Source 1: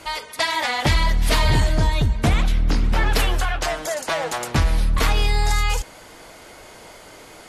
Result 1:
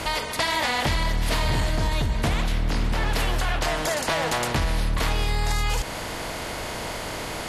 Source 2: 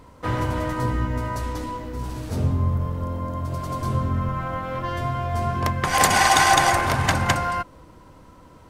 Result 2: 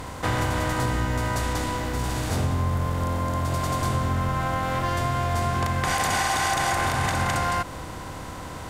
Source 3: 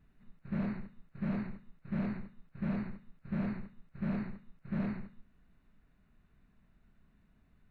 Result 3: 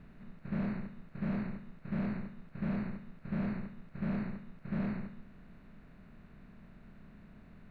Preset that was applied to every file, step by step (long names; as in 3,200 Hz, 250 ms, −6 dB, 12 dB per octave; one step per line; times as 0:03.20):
compressor on every frequency bin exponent 0.6
brickwall limiter −9.5 dBFS
downward compressor 2.5 to 1, threshold −20 dBFS
level −1.5 dB